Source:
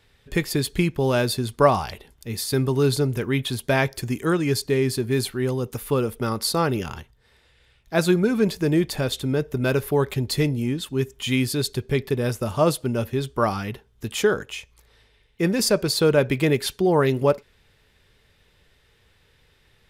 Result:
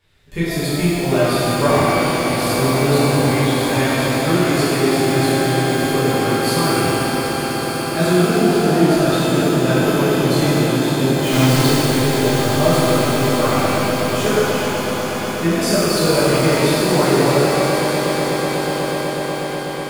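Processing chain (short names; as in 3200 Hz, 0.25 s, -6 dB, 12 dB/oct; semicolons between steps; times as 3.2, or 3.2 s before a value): 11.1–11.78 half-waves squared off; swelling echo 0.123 s, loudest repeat 8, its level -12.5 dB; shimmer reverb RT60 2.5 s, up +12 st, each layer -8 dB, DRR -11.5 dB; gain -8 dB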